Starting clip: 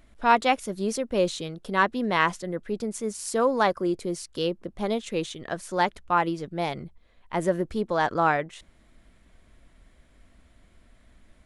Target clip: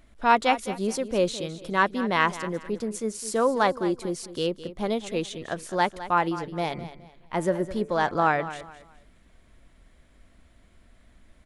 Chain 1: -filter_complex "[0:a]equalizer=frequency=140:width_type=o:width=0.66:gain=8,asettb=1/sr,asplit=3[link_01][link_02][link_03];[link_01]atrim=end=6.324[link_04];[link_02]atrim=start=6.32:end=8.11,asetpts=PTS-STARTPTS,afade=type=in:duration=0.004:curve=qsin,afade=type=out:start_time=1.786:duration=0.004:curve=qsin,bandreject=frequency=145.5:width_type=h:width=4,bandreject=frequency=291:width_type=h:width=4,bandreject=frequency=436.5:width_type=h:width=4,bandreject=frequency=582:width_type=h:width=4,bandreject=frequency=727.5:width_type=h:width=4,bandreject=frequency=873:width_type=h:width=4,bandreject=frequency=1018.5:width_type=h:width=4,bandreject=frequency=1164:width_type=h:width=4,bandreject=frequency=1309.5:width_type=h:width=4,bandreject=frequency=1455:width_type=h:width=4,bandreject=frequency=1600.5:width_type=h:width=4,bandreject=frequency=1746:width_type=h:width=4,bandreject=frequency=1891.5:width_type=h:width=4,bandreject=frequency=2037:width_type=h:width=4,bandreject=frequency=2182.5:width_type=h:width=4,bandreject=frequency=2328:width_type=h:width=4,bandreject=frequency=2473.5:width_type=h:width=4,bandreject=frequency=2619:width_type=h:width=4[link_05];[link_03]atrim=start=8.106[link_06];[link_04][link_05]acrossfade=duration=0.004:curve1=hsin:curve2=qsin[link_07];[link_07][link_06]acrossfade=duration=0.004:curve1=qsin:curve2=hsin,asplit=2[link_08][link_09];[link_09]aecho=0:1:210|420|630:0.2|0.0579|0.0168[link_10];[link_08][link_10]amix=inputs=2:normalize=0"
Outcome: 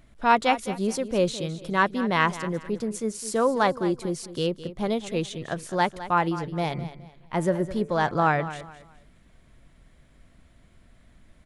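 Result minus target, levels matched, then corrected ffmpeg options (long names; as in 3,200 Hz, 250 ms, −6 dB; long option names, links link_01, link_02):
125 Hz band +4.5 dB
-filter_complex "[0:a]asettb=1/sr,asplit=3[link_01][link_02][link_03];[link_01]atrim=end=6.324[link_04];[link_02]atrim=start=6.32:end=8.11,asetpts=PTS-STARTPTS,afade=type=in:duration=0.004:curve=qsin,afade=type=out:start_time=1.786:duration=0.004:curve=qsin,bandreject=frequency=145.5:width_type=h:width=4,bandreject=frequency=291:width_type=h:width=4,bandreject=frequency=436.5:width_type=h:width=4,bandreject=frequency=582:width_type=h:width=4,bandreject=frequency=727.5:width_type=h:width=4,bandreject=frequency=873:width_type=h:width=4,bandreject=frequency=1018.5:width_type=h:width=4,bandreject=frequency=1164:width_type=h:width=4,bandreject=frequency=1309.5:width_type=h:width=4,bandreject=frequency=1455:width_type=h:width=4,bandreject=frequency=1600.5:width_type=h:width=4,bandreject=frequency=1746:width_type=h:width=4,bandreject=frequency=1891.5:width_type=h:width=4,bandreject=frequency=2037:width_type=h:width=4,bandreject=frequency=2182.5:width_type=h:width=4,bandreject=frequency=2328:width_type=h:width=4,bandreject=frequency=2473.5:width_type=h:width=4,bandreject=frequency=2619:width_type=h:width=4[link_05];[link_03]atrim=start=8.106[link_06];[link_04][link_05]acrossfade=duration=0.004:curve1=hsin:curve2=qsin[link_07];[link_07][link_06]acrossfade=duration=0.004:curve1=qsin:curve2=hsin,asplit=2[link_08][link_09];[link_09]aecho=0:1:210|420|630:0.2|0.0579|0.0168[link_10];[link_08][link_10]amix=inputs=2:normalize=0"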